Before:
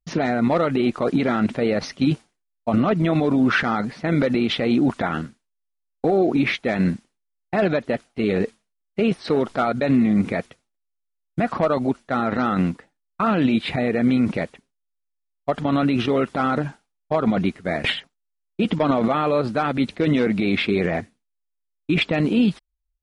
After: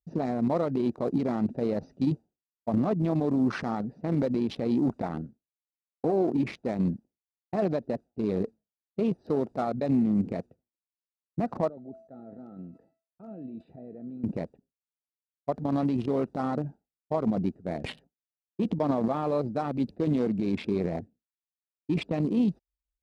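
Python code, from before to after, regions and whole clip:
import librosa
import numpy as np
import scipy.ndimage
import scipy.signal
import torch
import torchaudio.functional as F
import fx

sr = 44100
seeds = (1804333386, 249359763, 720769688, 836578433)

y = fx.chain(x, sr, fx.low_shelf(hz=84.0, db=-11.5),
    fx.comb_fb(f0_hz=660.0, decay_s=0.43, harmonics='all', damping=0.0, mix_pct=80),
    fx.sustainer(db_per_s=89.0), at=(11.69, 14.24))
y = fx.wiener(y, sr, points=41)
y = scipy.signal.sosfilt(scipy.signal.butter(2, 46.0, 'highpass', fs=sr, output='sos'), y)
y = fx.band_shelf(y, sr, hz=2200.0, db=-9.5, octaves=1.7)
y = y * librosa.db_to_amplitude(-6.0)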